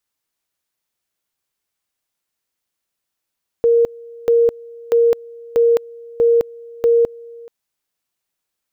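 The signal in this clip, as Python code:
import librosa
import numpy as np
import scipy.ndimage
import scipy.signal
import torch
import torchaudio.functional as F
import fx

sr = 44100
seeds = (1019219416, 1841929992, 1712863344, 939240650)

y = fx.two_level_tone(sr, hz=467.0, level_db=-9.5, drop_db=24.0, high_s=0.21, low_s=0.43, rounds=6)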